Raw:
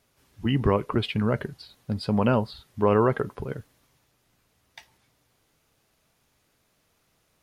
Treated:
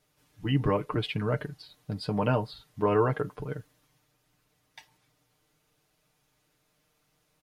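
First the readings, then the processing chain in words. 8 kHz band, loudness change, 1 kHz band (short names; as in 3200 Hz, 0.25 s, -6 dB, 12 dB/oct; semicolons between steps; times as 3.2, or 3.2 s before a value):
n/a, -4.0 dB, -3.5 dB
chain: comb 6.6 ms, depth 73%; gain -5 dB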